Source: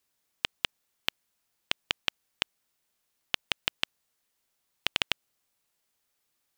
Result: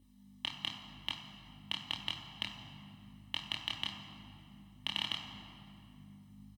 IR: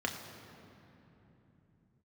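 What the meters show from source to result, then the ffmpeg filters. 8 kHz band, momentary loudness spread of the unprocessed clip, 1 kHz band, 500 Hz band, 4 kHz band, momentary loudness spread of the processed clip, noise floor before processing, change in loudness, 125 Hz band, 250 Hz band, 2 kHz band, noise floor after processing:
-10.5 dB, 5 LU, -5.0 dB, -12.5 dB, -4.5 dB, 20 LU, -78 dBFS, -6.5 dB, +3.0 dB, +1.5 dB, -10.0 dB, -59 dBFS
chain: -filter_complex "[0:a]aecho=1:1:1:0.91,alimiter=limit=0.178:level=0:latency=1,equalizer=f=400:t=o:w=0.33:g=-7,equalizer=f=2000:t=o:w=0.33:g=-8,equalizer=f=16000:t=o:w=0.33:g=7,aeval=exprs='val(0)+0.00158*(sin(2*PI*50*n/s)+sin(2*PI*2*50*n/s)/2+sin(2*PI*3*50*n/s)/3+sin(2*PI*4*50*n/s)/4+sin(2*PI*5*50*n/s)/5)':c=same,flanger=delay=22.5:depth=7:speed=0.91[s0];[1:a]atrim=start_sample=2205,asetrate=52920,aresample=44100[s1];[s0][s1]afir=irnorm=-1:irlink=0,volume=1.26"

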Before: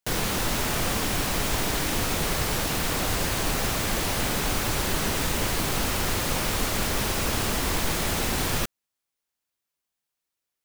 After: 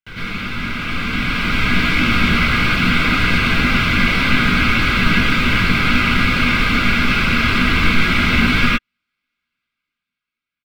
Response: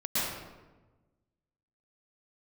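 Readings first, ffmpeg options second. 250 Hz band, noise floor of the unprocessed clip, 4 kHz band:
+13.0 dB, -85 dBFS, +8.5 dB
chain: -filter_complex "[0:a]firequalizer=gain_entry='entry(200,0);entry(680,-13);entry(1600,11);entry(6400,-18);entry(11000,-23)':delay=0.05:min_phase=1,dynaudnorm=f=230:g=11:m=3.98,aphaser=in_gain=1:out_gain=1:delay=4:decay=0.21:speed=1.8:type=triangular,asuperstop=centerf=1800:order=4:qfactor=5.2[s0];[1:a]atrim=start_sample=2205,atrim=end_sample=6174,asetrate=48510,aresample=44100[s1];[s0][s1]afir=irnorm=-1:irlink=0,volume=0.668"

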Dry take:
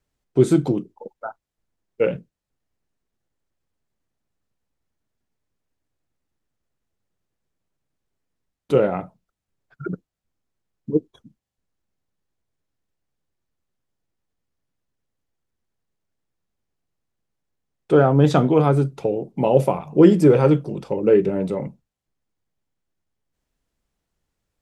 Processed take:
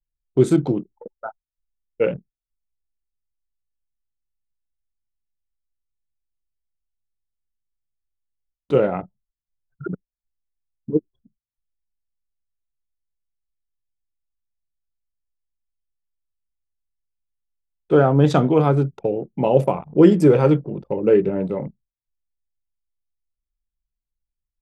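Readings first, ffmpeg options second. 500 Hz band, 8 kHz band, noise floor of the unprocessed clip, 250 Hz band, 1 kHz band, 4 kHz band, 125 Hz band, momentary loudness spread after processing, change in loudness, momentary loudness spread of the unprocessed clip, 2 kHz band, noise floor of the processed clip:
0.0 dB, no reading, -84 dBFS, 0.0 dB, 0.0 dB, -0.5 dB, 0.0 dB, 21 LU, 0.0 dB, 20 LU, 0.0 dB, under -85 dBFS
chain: -af "anlmdn=10"

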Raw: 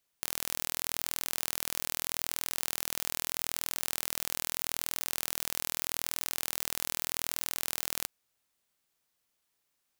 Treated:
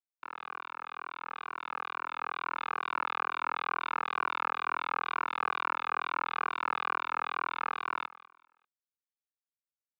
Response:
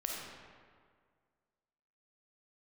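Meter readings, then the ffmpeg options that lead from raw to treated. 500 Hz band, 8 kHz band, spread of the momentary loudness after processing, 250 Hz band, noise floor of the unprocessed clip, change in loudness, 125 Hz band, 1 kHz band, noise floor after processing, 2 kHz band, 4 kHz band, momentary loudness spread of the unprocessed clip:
0.0 dB, under -35 dB, 10 LU, -2.5 dB, -79 dBFS, -2.0 dB, under -10 dB, +14.0 dB, under -85 dBFS, +6.0 dB, -8.5 dB, 0 LU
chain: -filter_complex "[0:a]aresample=8000,acrusher=bits=4:mix=0:aa=0.5,aresample=44100,aecho=1:1:0.8:0.51,acrusher=bits=2:mode=log:mix=0:aa=0.000001,asplit=2[s0][s1];[s1]highpass=f=720:p=1,volume=14.1,asoftclip=type=tanh:threshold=0.0596[s2];[s0][s2]amix=inputs=2:normalize=0,lowpass=f=1000:p=1,volume=0.501,highpass=680,lowpass=2400,dynaudnorm=f=400:g=11:m=3.16,aecho=1:1:197|394|591:0.112|0.037|0.0122,asplit=2[s3][s4];[s4]adelay=2,afreqshift=-2.2[s5];[s3][s5]amix=inputs=2:normalize=1,volume=2.24"

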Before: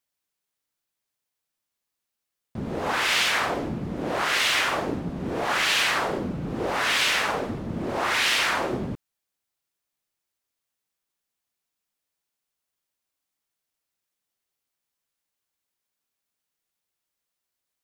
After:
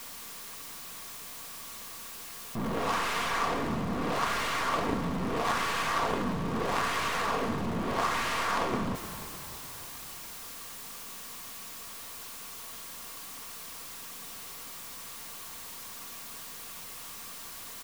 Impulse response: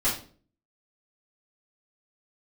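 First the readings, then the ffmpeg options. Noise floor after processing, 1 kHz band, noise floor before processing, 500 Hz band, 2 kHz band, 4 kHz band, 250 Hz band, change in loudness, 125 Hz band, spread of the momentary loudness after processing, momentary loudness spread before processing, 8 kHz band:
-44 dBFS, -1.5 dB, -84 dBFS, -3.5 dB, -8.5 dB, -10.5 dB, -2.0 dB, -9.5 dB, -2.5 dB, 11 LU, 11 LU, -4.0 dB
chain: -filter_complex "[0:a]aeval=exprs='val(0)+0.5*0.0133*sgn(val(0))':c=same,highpass=81,acrossover=split=1600[s0][s1];[s1]acompressor=threshold=0.02:ratio=6[s2];[s0][s2]amix=inputs=2:normalize=0,lowshelf=f=150:g=7.5,aeval=exprs='0.2*(cos(1*acos(clip(val(0)/0.2,-1,1)))-cos(1*PI/2))+0.0355*(cos(6*acos(clip(val(0)/0.2,-1,1)))-cos(6*PI/2))':c=same,aeval=exprs='clip(val(0),-1,0.0355)':c=same,equalizer=f=1100:w=5.6:g=9,aecho=1:1:4.3:0.31,asplit=7[s3][s4][s5][s6][s7][s8][s9];[s4]adelay=301,afreqshift=-33,volume=0.211[s10];[s5]adelay=602,afreqshift=-66,volume=0.123[s11];[s6]adelay=903,afreqshift=-99,volume=0.0708[s12];[s7]adelay=1204,afreqshift=-132,volume=0.0412[s13];[s8]adelay=1505,afreqshift=-165,volume=0.024[s14];[s9]adelay=1806,afreqshift=-198,volume=0.0138[s15];[s3][s10][s11][s12][s13][s14][s15]amix=inputs=7:normalize=0"

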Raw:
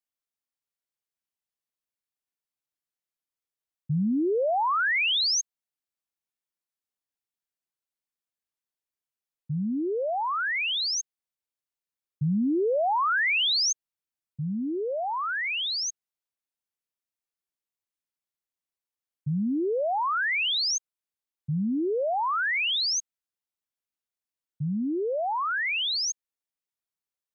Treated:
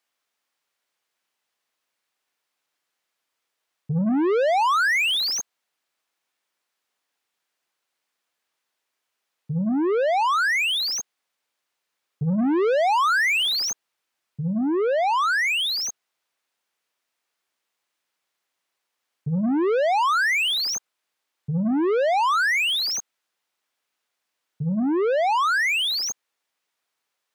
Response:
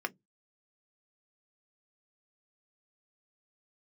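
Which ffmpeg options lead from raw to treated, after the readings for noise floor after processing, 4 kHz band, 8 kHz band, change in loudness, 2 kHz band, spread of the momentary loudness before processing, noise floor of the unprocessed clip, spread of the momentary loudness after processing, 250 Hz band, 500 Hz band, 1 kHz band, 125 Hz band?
-81 dBFS, +2.5 dB, no reading, +4.5 dB, +5.0 dB, 10 LU, under -85 dBFS, 10 LU, +4.5 dB, +5.5 dB, +6.0 dB, +3.0 dB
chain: -filter_complex "[0:a]bandreject=f=50:t=h:w=6,bandreject=f=100:t=h:w=6,bandreject=f=150:t=h:w=6,bandreject=f=200:t=h:w=6,asplit=2[s0][s1];[s1]highpass=f=720:p=1,volume=14.1,asoftclip=type=tanh:threshold=0.126[s2];[s0][s2]amix=inputs=2:normalize=0,lowpass=f=2800:p=1,volume=0.501,volume=1.33"

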